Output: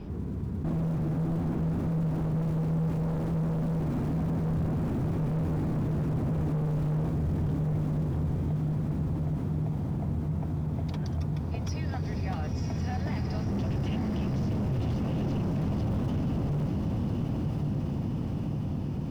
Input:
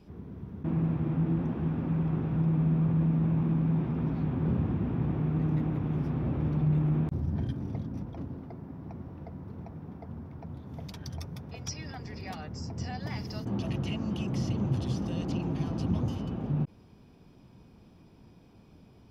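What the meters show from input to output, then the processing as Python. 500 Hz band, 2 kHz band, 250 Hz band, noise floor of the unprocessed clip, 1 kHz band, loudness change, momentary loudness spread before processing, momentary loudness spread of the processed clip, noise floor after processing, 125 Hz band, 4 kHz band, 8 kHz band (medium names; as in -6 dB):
+3.5 dB, +1.5 dB, +1.0 dB, -56 dBFS, +3.0 dB, +0.5 dB, 16 LU, 3 LU, -33 dBFS, +2.0 dB, -2.5 dB, no reading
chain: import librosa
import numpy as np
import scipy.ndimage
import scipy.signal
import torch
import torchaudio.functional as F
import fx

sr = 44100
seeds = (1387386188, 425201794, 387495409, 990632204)

p1 = fx.mod_noise(x, sr, seeds[0], snr_db=23)
p2 = fx.hum_notches(p1, sr, base_hz=60, count=3)
p3 = p2 + fx.echo_diffused(p2, sr, ms=1026, feedback_pct=61, wet_db=-5.0, dry=0)
p4 = np.clip(p3, -10.0 ** (-30.5 / 20.0), 10.0 ** (-30.5 / 20.0))
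p5 = fx.lowpass(p4, sr, hz=2000.0, slope=6)
p6 = fx.low_shelf(p5, sr, hz=110.0, db=7.5)
p7 = fx.echo_diffused(p6, sr, ms=476, feedback_pct=76, wet_db=-15)
y = fx.env_flatten(p7, sr, amount_pct=50)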